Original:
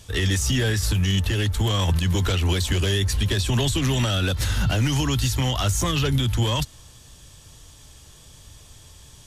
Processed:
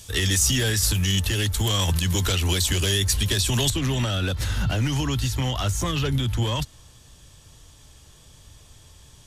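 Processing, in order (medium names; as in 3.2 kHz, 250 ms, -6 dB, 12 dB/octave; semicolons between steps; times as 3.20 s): treble shelf 3.8 kHz +11 dB, from 3.70 s -2.5 dB; trim -2 dB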